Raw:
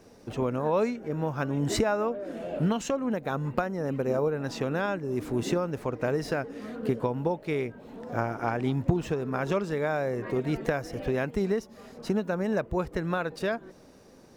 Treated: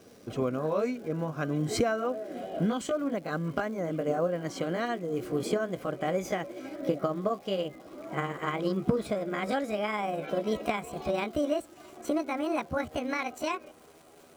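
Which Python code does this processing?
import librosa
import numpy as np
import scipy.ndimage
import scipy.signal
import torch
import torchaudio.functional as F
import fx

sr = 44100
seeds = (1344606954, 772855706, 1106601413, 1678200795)

y = fx.pitch_glide(x, sr, semitones=8.5, runs='starting unshifted')
y = fx.notch_comb(y, sr, f0_hz=900.0)
y = fx.dmg_crackle(y, sr, seeds[0], per_s=490.0, level_db=-48.0)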